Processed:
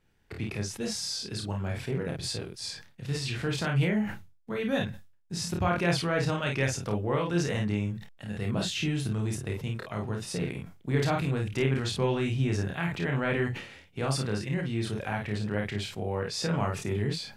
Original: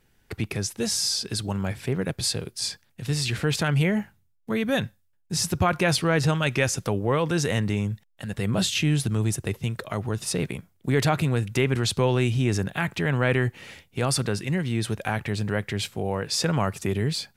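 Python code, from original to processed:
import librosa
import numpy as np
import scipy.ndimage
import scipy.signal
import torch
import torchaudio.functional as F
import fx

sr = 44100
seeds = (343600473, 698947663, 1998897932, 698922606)

y = fx.high_shelf(x, sr, hz=7900.0, db=-11.5)
y = fx.room_early_taps(y, sr, ms=(29, 52), db=(-3.5, -5.0))
y = fx.sustainer(y, sr, db_per_s=97.0)
y = y * librosa.db_to_amplitude(-7.0)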